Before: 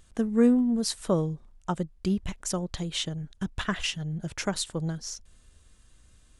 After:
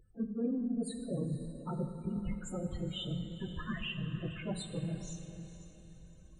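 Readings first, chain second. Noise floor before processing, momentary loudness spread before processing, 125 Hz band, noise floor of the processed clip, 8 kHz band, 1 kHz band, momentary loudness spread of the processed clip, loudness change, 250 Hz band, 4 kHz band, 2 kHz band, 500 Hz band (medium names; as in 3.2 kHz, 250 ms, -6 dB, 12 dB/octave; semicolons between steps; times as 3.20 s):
-59 dBFS, 13 LU, -5.0 dB, -56 dBFS, -15.5 dB, -12.5 dB, 15 LU, -9.5 dB, -9.5 dB, -11.0 dB, -10.0 dB, -11.0 dB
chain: phase randomisation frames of 50 ms; peaking EQ 5.3 kHz -14.5 dB 0.54 oct; reverse; compression 4:1, threshold -35 dBFS, peak gain reduction 17.5 dB; reverse; loudest bins only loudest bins 16; on a send: echo that smears into a reverb 498 ms, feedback 42%, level -13 dB; on the sum: plate-style reverb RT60 2.4 s, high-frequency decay 0.85×, DRR 7.5 dB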